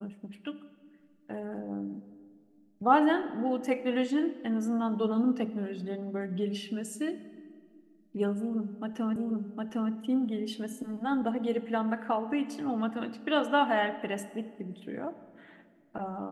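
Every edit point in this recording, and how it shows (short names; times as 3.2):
9.16 repeat of the last 0.76 s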